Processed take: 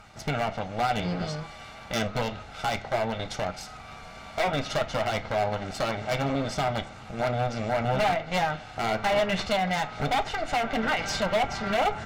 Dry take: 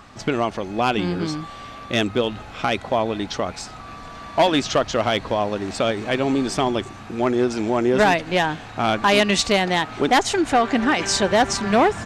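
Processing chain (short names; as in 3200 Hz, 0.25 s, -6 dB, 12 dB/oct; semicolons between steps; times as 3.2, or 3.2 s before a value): minimum comb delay 1.4 ms; treble ducked by the level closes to 1700 Hz, closed at -14 dBFS; wavefolder -15.5 dBFS; on a send: reverb RT60 0.40 s, pre-delay 3 ms, DRR 6 dB; on the sum: gain -5 dB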